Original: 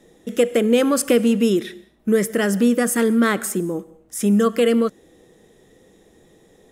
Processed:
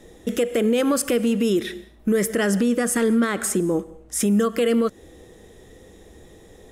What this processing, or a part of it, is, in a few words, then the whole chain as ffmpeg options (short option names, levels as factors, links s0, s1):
car stereo with a boomy subwoofer: -filter_complex "[0:a]asettb=1/sr,asplit=3[s0][s1][s2];[s0]atrim=end=2.324[s3];[s1]atrim=start=2.32:end=4.2,asetpts=PTS-STARTPTS,afade=t=in:d=0.004:c=qsin,afade=t=out:st=1.876:d=0.004:c=qsin,lowpass=11000[s4];[s2]atrim=start=4.196[s5];[s3][s4]acrossfade=d=0.004:c1=hsin:c2=qsin[s6];[s6][s5]acrossfade=d=0.004:c1=qsin:c2=hsin,lowshelf=f=110:t=q:w=1.5:g=7.5,alimiter=limit=0.133:level=0:latency=1:release=196,volume=1.78"